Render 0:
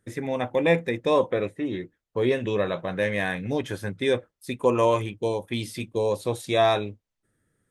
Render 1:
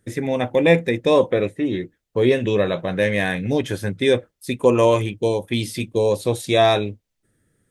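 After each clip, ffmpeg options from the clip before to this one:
-af "equalizer=f=1100:w=1.1:g=-5.5,volume=2.24"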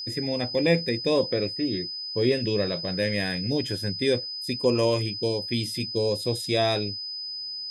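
-af "aeval=exprs='val(0)+0.0447*sin(2*PI*5000*n/s)':c=same,equalizer=f=1000:w=0.81:g=-7,volume=0.596"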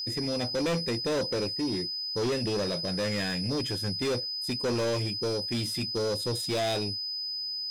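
-af "asoftclip=type=tanh:threshold=0.0501,volume=1.12"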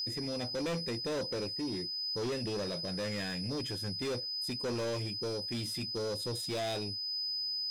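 -af "alimiter=level_in=2:limit=0.0631:level=0:latency=1:release=284,volume=0.501,volume=0.841"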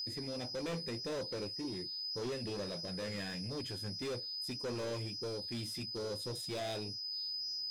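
-af "flanger=delay=1.6:depth=8.2:regen=-69:speed=1.7:shape=sinusoidal"

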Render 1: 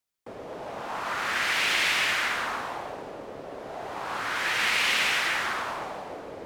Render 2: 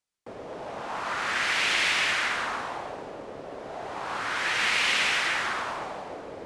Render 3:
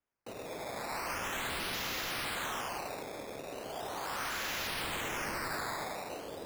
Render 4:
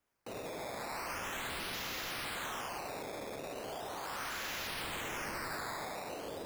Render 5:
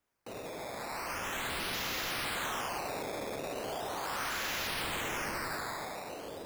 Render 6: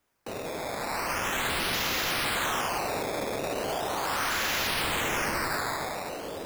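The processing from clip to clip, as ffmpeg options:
-af "lowpass=f=10000:w=0.5412,lowpass=f=10000:w=1.3066"
-af "acrusher=samples=10:mix=1:aa=0.000001:lfo=1:lforange=10:lforate=0.39,aeval=exprs='0.0376*(abs(mod(val(0)/0.0376+3,4)-2)-1)':c=same,volume=0.668"
-af "alimiter=level_in=8.41:limit=0.0631:level=0:latency=1:release=71,volume=0.119,volume=2.24"
-af "dynaudnorm=f=340:g=7:m=1.68"
-af "acrusher=bits=2:mode=log:mix=0:aa=0.000001,volume=2.11"

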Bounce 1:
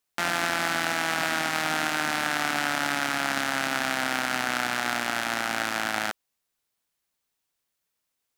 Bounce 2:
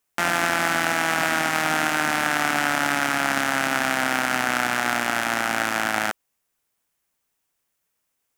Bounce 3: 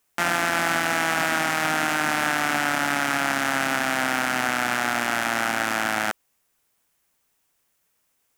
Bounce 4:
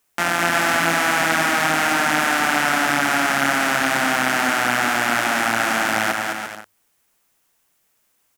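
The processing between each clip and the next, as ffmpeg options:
-af "equalizer=f=4100:w=1.9:g=-6,volume=1.78"
-af "alimiter=limit=0.211:level=0:latency=1:release=35,volume=1.88"
-af "bandreject=f=50:t=h:w=6,bandreject=f=100:t=h:w=6,bandreject=f=150:t=h:w=6,aecho=1:1:210|346.5|435.2|492.9|530.4:0.631|0.398|0.251|0.158|0.1,volume=1.33"

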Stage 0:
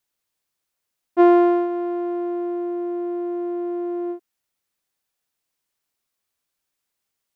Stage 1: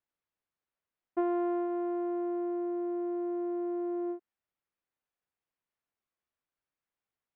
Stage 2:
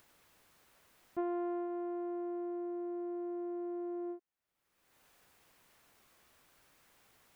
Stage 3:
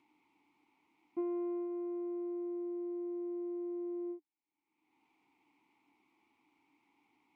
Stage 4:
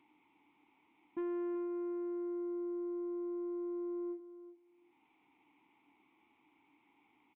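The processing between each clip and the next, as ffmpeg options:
-af "acompressor=threshold=0.0891:ratio=6,lowpass=2200,volume=0.447"
-af "acompressor=mode=upward:threshold=0.0141:ratio=2.5,volume=0.501"
-filter_complex "[0:a]asplit=3[s0][s1][s2];[s0]bandpass=f=300:t=q:w=8,volume=1[s3];[s1]bandpass=f=870:t=q:w=8,volume=0.501[s4];[s2]bandpass=f=2240:t=q:w=8,volume=0.355[s5];[s3][s4][s5]amix=inputs=3:normalize=0,volume=2.99"
-af "aresample=8000,asoftclip=type=tanh:threshold=0.0141,aresample=44100,aecho=1:1:376|752:0.211|0.0317,volume=1.41"

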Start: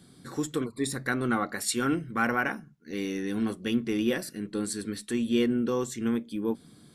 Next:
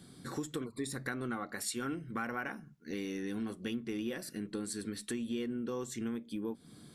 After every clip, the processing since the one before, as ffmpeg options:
-af "acompressor=threshold=0.0158:ratio=4"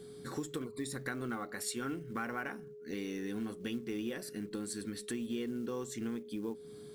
-af "acrusher=bits=7:mode=log:mix=0:aa=0.000001,aeval=exprs='val(0)+0.00447*sin(2*PI*420*n/s)':c=same,volume=0.891"

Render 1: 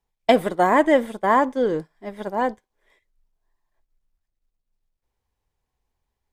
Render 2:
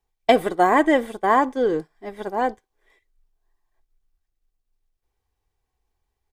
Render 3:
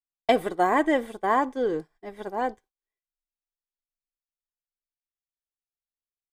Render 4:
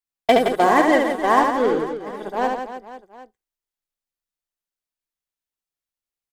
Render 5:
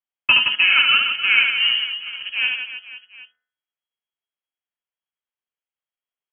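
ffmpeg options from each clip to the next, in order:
-af "aecho=1:1:2.6:0.37"
-af "agate=range=0.0316:threshold=0.00501:ratio=16:detection=peak,volume=0.562"
-filter_complex "[0:a]asplit=2[s0][s1];[s1]acrusher=bits=3:mix=0:aa=0.5,volume=0.376[s2];[s0][s2]amix=inputs=2:normalize=0,aecho=1:1:70|168|305.2|497.3|766.2:0.631|0.398|0.251|0.158|0.1,volume=1.26"
-af "lowpass=f=2800:t=q:w=0.5098,lowpass=f=2800:t=q:w=0.6013,lowpass=f=2800:t=q:w=0.9,lowpass=f=2800:t=q:w=2.563,afreqshift=-3300,bandreject=f=78.36:t=h:w=4,bandreject=f=156.72:t=h:w=4,bandreject=f=235.08:t=h:w=4,bandreject=f=313.44:t=h:w=4,bandreject=f=391.8:t=h:w=4,bandreject=f=470.16:t=h:w=4,bandreject=f=548.52:t=h:w=4,bandreject=f=626.88:t=h:w=4,bandreject=f=705.24:t=h:w=4,bandreject=f=783.6:t=h:w=4,bandreject=f=861.96:t=h:w=4,bandreject=f=940.32:t=h:w=4,bandreject=f=1018.68:t=h:w=4,bandreject=f=1097.04:t=h:w=4,bandreject=f=1175.4:t=h:w=4,bandreject=f=1253.76:t=h:w=4,bandreject=f=1332.12:t=h:w=4,bandreject=f=1410.48:t=h:w=4,bandreject=f=1488.84:t=h:w=4,bandreject=f=1567.2:t=h:w=4,bandreject=f=1645.56:t=h:w=4,bandreject=f=1723.92:t=h:w=4,bandreject=f=1802.28:t=h:w=4,bandreject=f=1880.64:t=h:w=4,bandreject=f=1959:t=h:w=4,bandreject=f=2037.36:t=h:w=4"

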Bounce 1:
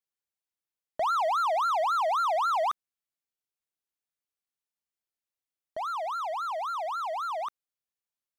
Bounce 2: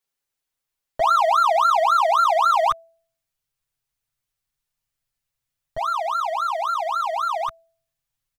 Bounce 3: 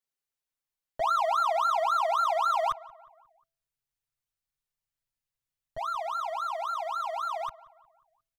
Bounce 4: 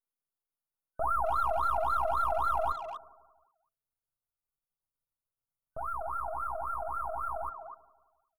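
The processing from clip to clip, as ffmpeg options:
-af "bandreject=f=330.5:t=h:w=4,bandreject=f=661:t=h:w=4,asubboost=boost=11.5:cutoff=96,aecho=1:1:7.4:0.99,volume=2"
-filter_complex "[0:a]asplit=2[s0][s1];[s1]adelay=179,lowpass=f=2200:p=1,volume=0.1,asplit=2[s2][s3];[s3]adelay=179,lowpass=f=2200:p=1,volume=0.51,asplit=2[s4][s5];[s5]adelay=179,lowpass=f=2200:p=1,volume=0.51,asplit=2[s6][s7];[s7]adelay=179,lowpass=f=2200:p=1,volume=0.51[s8];[s0][s2][s4][s6][s8]amix=inputs=5:normalize=0,volume=0.376"
-filter_complex "[0:a]aeval=exprs='if(lt(val(0),0),0.251*val(0),val(0))':c=same,afftfilt=real='re*(1-between(b*sr/4096,1500,8800))':imag='im*(1-between(b*sr/4096,1500,8800))':win_size=4096:overlap=0.75,asplit=2[s0][s1];[s1]adelay=250,highpass=300,lowpass=3400,asoftclip=type=hard:threshold=0.0398,volume=0.398[s2];[s0][s2]amix=inputs=2:normalize=0"

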